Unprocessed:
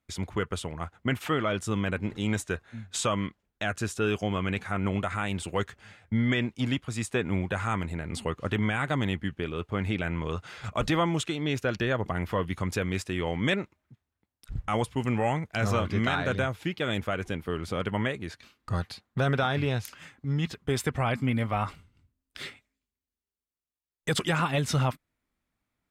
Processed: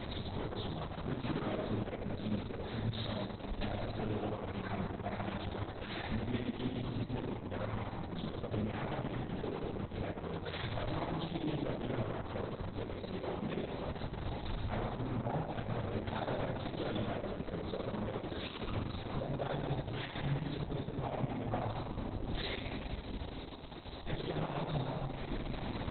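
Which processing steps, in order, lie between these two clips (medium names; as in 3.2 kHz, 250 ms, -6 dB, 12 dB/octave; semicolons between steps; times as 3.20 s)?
jump at every zero crossing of -32.5 dBFS; reverb removal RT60 1.1 s; low-pass 6.5 kHz 12 dB/octave; high-order bell 1.9 kHz -11.5 dB; compression 10:1, threshold -40 dBFS, peak gain reduction 18.5 dB; one-sided clip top -45.5 dBFS, bottom -33 dBFS; short-mantissa float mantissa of 2-bit; reverberation RT60 2.6 s, pre-delay 6 ms, DRR -6.5 dB; trim +1.5 dB; Opus 6 kbps 48 kHz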